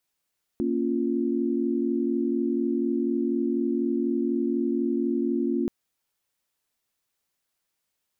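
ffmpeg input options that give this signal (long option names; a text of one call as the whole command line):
ffmpeg -f lavfi -i "aevalsrc='0.0447*(sin(2*PI*233.08*t)+sin(2*PI*277.18*t)+sin(2*PI*349.23*t))':duration=5.08:sample_rate=44100" out.wav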